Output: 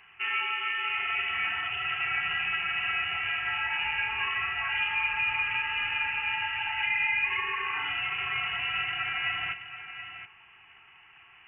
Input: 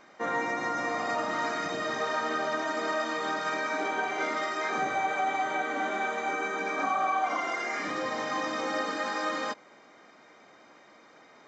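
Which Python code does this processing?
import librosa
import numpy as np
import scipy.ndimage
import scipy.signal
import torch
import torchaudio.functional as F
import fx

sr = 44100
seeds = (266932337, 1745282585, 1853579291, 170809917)

y = x + 10.0 ** (-11.0 / 20.0) * np.pad(x, (int(727 * sr / 1000.0), 0))[:len(x)]
y = fx.freq_invert(y, sr, carrier_hz=3200)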